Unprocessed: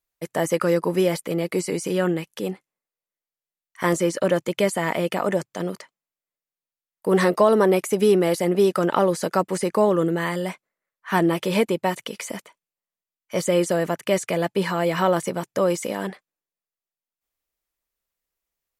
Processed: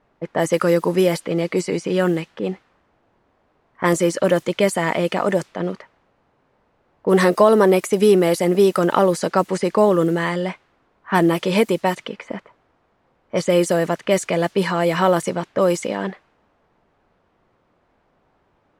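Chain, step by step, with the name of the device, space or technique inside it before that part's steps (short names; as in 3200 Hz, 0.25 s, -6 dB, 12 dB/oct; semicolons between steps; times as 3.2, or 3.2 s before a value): cassette deck with a dynamic noise filter (white noise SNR 30 dB; low-pass opened by the level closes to 860 Hz, open at -17 dBFS); gain +3.5 dB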